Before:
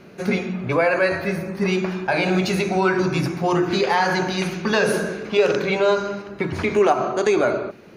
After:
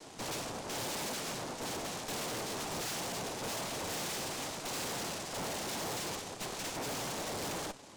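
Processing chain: band shelf 1100 Hz +11.5 dB 2.3 oct; AGC; noise vocoder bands 2; tube stage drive 30 dB, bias 0.75; gain -7 dB

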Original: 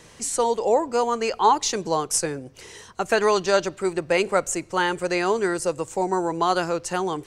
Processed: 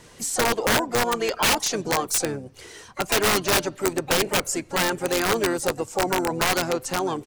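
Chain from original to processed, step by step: bin magnitudes rounded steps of 15 dB; harmoniser -5 st -10 dB, +7 st -14 dB; wrapped overs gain 14 dB

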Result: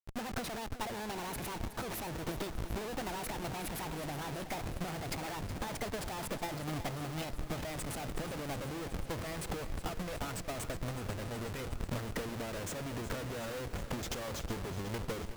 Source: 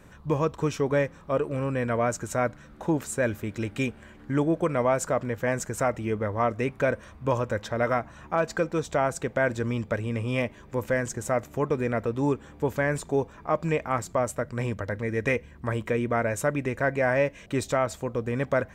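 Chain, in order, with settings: speed glide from 163% -> 81%; in parallel at -1 dB: limiter -23 dBFS, peak gain reduction 10 dB; on the sum: Schmitt trigger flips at -35.5 dBFS; gate -23 dBFS, range -16 dB; lo-fi delay 0.369 s, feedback 80%, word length 10-bit, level -12.5 dB

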